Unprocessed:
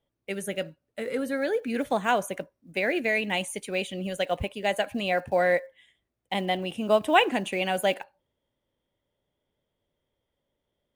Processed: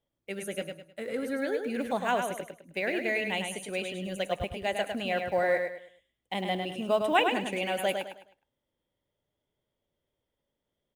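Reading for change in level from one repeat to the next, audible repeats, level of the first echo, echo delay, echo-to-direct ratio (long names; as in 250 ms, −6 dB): −10.0 dB, 3, −5.5 dB, 104 ms, −5.0 dB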